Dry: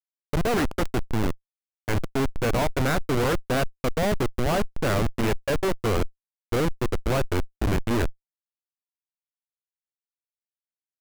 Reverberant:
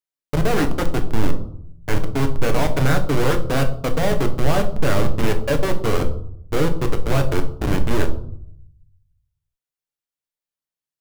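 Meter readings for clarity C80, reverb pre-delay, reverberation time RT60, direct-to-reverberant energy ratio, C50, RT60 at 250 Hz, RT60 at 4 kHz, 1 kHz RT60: 15.0 dB, 6 ms, 0.65 s, 5.5 dB, 12.0 dB, 1.1 s, 0.40 s, 0.60 s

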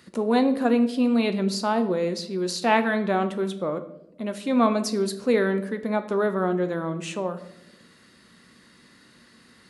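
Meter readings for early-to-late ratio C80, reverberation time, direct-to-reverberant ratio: 16.0 dB, no single decay rate, 8.0 dB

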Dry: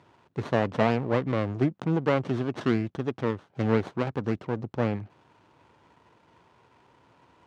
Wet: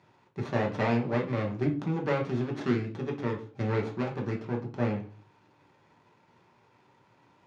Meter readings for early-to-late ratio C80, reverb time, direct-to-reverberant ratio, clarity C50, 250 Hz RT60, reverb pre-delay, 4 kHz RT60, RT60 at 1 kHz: 16.5 dB, 0.40 s, 0.0 dB, 10.5 dB, 0.50 s, 5 ms, 0.45 s, 0.40 s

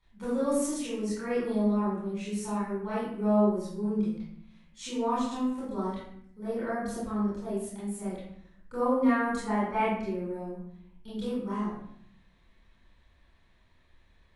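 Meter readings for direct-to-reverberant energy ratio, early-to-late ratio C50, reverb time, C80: -11.0 dB, -0.5 dB, 0.65 s, 4.0 dB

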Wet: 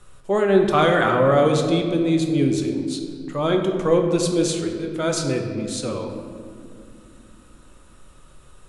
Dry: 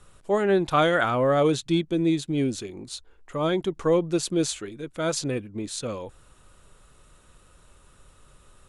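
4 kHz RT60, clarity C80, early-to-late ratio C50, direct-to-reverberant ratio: 1.2 s, 6.5 dB, 5.0 dB, 2.5 dB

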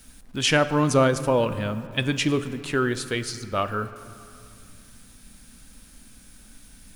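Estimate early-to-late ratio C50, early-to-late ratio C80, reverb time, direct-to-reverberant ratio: 13.0 dB, 13.5 dB, 2.4 s, 11.0 dB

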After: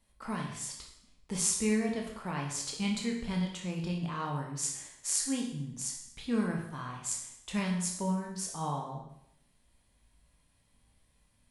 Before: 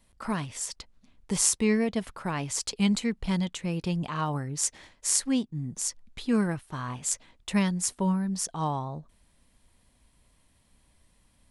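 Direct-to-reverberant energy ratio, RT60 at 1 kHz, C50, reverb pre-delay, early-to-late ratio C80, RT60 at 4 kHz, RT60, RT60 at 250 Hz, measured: -0.5 dB, 0.75 s, 4.5 dB, 18 ms, 7.5 dB, 0.75 s, 0.75 s, 0.75 s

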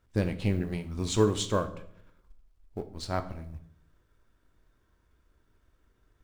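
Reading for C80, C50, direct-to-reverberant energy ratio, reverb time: 16.5 dB, 13.5 dB, 8.0 dB, 0.70 s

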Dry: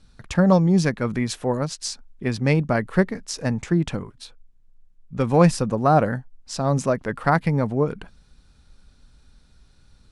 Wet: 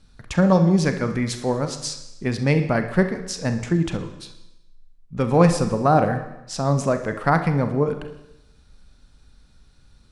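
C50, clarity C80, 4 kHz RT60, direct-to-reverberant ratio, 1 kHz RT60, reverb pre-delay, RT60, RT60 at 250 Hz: 10.0 dB, 12.5 dB, 0.90 s, 7.5 dB, 0.90 s, 33 ms, 0.90 s, 0.95 s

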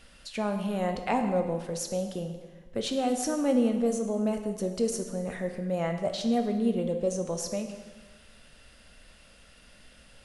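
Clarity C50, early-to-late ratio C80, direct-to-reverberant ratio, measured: 7.5 dB, 9.0 dB, 5.0 dB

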